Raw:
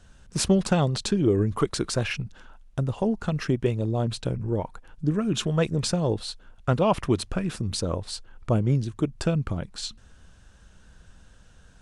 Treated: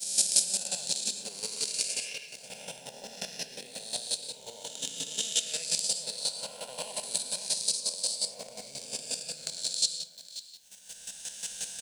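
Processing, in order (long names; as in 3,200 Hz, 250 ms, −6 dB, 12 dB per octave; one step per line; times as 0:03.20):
peak hold with a rise ahead of every peak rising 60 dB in 2.40 s
camcorder AGC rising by 14 dB per second
downward expander −23 dBFS
first difference
slap from a distant wall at 93 metres, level −7 dB
in parallel at −9.5 dB: bit-depth reduction 8 bits, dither triangular
on the sum: transient designer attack +11 dB, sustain −3 dB
phaser with its sweep stopped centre 330 Hz, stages 6
convolution reverb RT60 0.55 s, pre-delay 104 ms, DRR 3 dB
square-wave tremolo 5.6 Hz, depth 65%, duty 20%
level −1.5 dB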